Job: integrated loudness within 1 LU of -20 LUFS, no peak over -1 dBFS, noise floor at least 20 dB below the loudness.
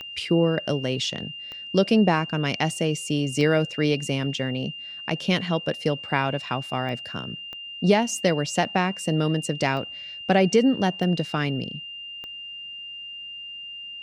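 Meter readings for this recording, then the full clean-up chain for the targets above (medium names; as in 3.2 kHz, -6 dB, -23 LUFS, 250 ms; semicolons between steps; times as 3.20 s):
clicks found 8; steady tone 2.8 kHz; tone level -35 dBFS; loudness -25.0 LUFS; peak level -7.0 dBFS; loudness target -20.0 LUFS
-> de-click; band-stop 2.8 kHz, Q 30; trim +5 dB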